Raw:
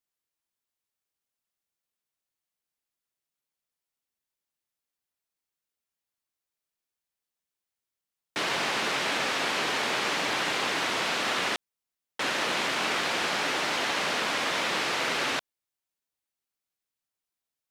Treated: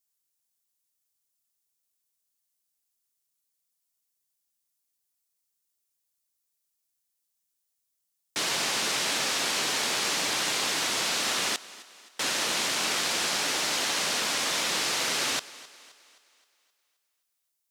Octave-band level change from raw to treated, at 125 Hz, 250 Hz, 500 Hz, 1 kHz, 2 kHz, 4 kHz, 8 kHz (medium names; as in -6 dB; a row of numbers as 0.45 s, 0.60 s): -2.0 dB, -2.5 dB, -3.5 dB, -3.5 dB, -2.0 dB, +2.5 dB, +9.0 dB